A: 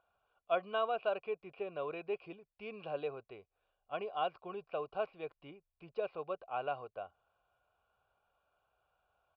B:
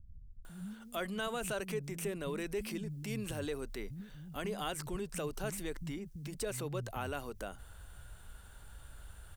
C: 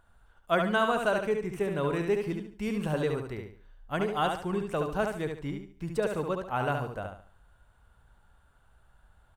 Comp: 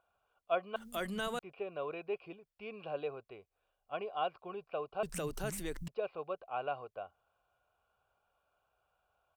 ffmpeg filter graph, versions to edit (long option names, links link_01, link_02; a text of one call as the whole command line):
ffmpeg -i take0.wav -i take1.wav -filter_complex "[1:a]asplit=2[link_01][link_02];[0:a]asplit=3[link_03][link_04][link_05];[link_03]atrim=end=0.762[link_06];[link_01]atrim=start=0.758:end=1.392[link_07];[link_04]atrim=start=1.388:end=5.032[link_08];[link_02]atrim=start=5.028:end=5.882[link_09];[link_05]atrim=start=5.878[link_10];[link_06][link_07]acrossfade=duration=0.004:curve1=hsin:curve2=hsin[link_11];[link_11][link_08]acrossfade=duration=0.004:curve1=hsin:curve2=hsin[link_12];[link_12][link_09]acrossfade=duration=0.004:curve1=hsin:curve2=hsin[link_13];[link_13][link_10]acrossfade=duration=0.004:curve1=hsin:curve2=hsin" out.wav